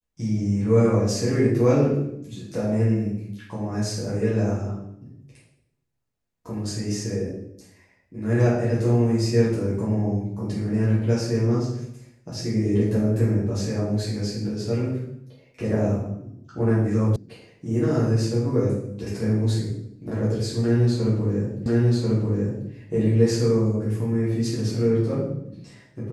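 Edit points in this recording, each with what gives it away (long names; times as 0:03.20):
0:17.16: cut off before it has died away
0:21.66: the same again, the last 1.04 s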